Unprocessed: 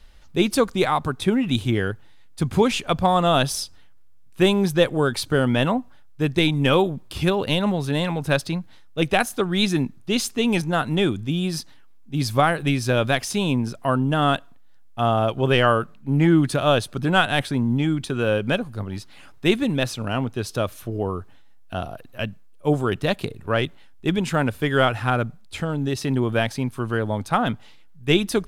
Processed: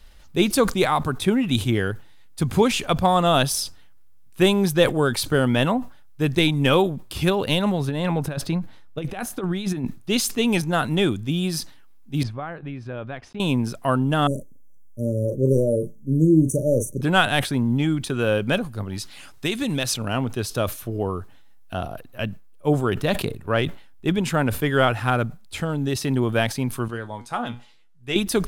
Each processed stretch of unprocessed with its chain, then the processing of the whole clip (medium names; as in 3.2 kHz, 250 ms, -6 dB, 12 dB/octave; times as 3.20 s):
7.80–9.86 s: treble shelf 2.6 kHz -9 dB + compressor with a negative ratio -24 dBFS, ratio -0.5
12.23–13.40 s: low-pass 1.9 kHz + compression 2:1, threshold -39 dBFS + gate -40 dBFS, range -40 dB
14.27–17.01 s: brick-wall FIR band-stop 620–5700 Hz + doubling 38 ms -9 dB
18.98–19.94 s: peaking EQ 6.4 kHz +7.5 dB 2.8 oct + compression, threshold -20 dBFS
21.76–25.00 s: peaking EQ 9.4 kHz -3.5 dB 3 oct + decay stretcher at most 120 dB/s
26.88–28.16 s: low-pass 10 kHz + bass shelf 190 Hz -7.5 dB + feedback comb 120 Hz, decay 0.17 s, mix 80%
whole clip: treble shelf 9.9 kHz +8.5 dB; decay stretcher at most 140 dB/s